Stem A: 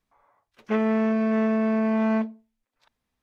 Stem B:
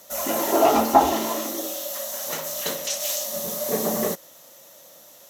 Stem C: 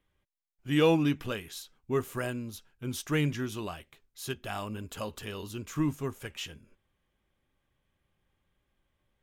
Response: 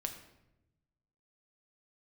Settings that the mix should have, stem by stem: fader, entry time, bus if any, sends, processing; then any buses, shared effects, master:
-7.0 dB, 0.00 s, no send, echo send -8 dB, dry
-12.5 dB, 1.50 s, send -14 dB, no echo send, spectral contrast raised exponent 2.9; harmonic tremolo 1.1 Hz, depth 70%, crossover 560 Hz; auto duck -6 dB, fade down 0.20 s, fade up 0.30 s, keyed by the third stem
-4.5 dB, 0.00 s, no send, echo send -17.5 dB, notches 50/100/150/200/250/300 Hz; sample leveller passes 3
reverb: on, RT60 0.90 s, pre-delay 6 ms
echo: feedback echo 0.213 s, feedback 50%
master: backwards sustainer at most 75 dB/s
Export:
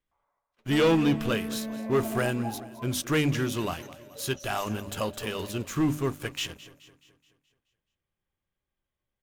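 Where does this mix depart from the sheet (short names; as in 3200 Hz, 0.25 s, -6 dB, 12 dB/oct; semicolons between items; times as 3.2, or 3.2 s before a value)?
stem A -7.0 dB -> -14.5 dB; master: missing backwards sustainer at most 75 dB/s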